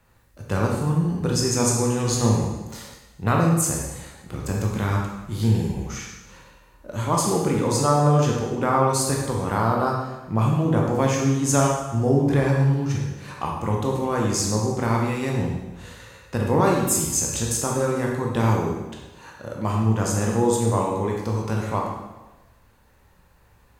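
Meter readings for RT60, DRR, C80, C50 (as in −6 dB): 1.1 s, −1.5 dB, 4.5 dB, 1.5 dB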